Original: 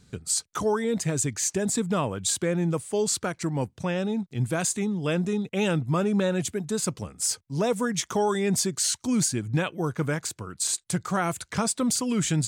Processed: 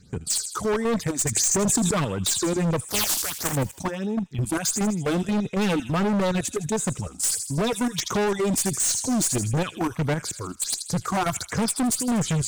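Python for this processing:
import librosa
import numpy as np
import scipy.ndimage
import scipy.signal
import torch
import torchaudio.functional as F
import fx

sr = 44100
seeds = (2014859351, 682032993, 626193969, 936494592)

p1 = fx.spec_flatten(x, sr, power=0.19, at=(2.88, 3.52), fade=0.02)
p2 = fx.level_steps(p1, sr, step_db=13)
p3 = fx.phaser_stages(p2, sr, stages=6, low_hz=120.0, high_hz=4600.0, hz=1.5, feedback_pct=20)
p4 = p3 + fx.echo_wet_highpass(p3, sr, ms=80, feedback_pct=51, hz=2700.0, wet_db=-10, dry=0)
p5 = fx.cheby_harmonics(p4, sr, harmonics=(4, 5), levels_db=(-20, -17), full_scale_db=-14.0)
p6 = np.clip(p5, -10.0 ** (-28.0 / 20.0), 10.0 ** (-28.0 / 20.0))
p7 = fx.env_flatten(p6, sr, amount_pct=100, at=(1.36, 1.91))
y = F.gain(torch.from_numpy(p7), 7.5).numpy()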